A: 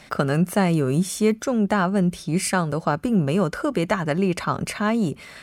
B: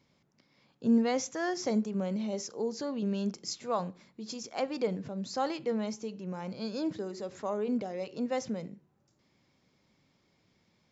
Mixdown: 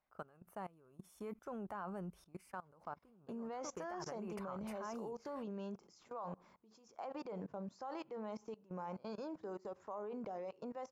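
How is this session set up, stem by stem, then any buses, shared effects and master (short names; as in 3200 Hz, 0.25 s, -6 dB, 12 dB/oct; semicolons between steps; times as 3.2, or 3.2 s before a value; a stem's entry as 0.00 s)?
0.97 s -19 dB -> 1.27 s -9 dB -> 2.17 s -9 dB -> 2.44 s -20.5 dB -> 3.46 s -20.5 dB -> 4.17 s -11.5 dB, 0.00 s, no send, dry
+3.0 dB, 2.45 s, no send, dry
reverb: off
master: ten-band EQ 125 Hz -10 dB, 250 Hz -8 dB, 500 Hz -3 dB, 1000 Hz +6 dB, 2000 Hz -7 dB, 4000 Hz -12 dB, 8000 Hz -11 dB; level quantiser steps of 22 dB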